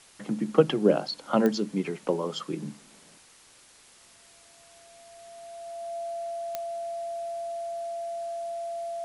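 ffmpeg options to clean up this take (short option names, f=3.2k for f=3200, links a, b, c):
-af "adeclick=t=4,bandreject=f=680:w=30,afwtdn=0.0022"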